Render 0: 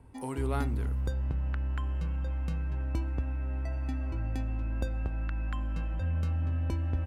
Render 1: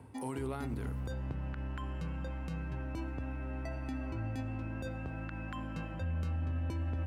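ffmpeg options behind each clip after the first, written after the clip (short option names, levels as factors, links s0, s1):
-af "highpass=f=85:w=0.5412,highpass=f=85:w=1.3066,areverse,acompressor=mode=upward:threshold=0.0141:ratio=2.5,areverse,alimiter=level_in=2:limit=0.0631:level=0:latency=1:release=42,volume=0.501,volume=1.12"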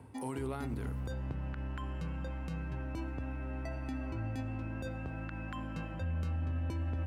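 -af anull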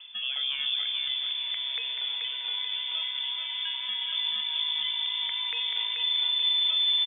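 -filter_complex "[0:a]lowpass=f=3100:t=q:w=0.5098,lowpass=f=3100:t=q:w=0.6013,lowpass=f=3100:t=q:w=0.9,lowpass=f=3100:t=q:w=2.563,afreqshift=-3600,aecho=1:1:433|866|1299|1732|2165|2598:0.596|0.28|0.132|0.0618|0.0291|0.0137,acrossover=split=450[s0][s1];[s0]acrusher=samples=13:mix=1:aa=0.000001[s2];[s2][s1]amix=inputs=2:normalize=0,volume=2.11"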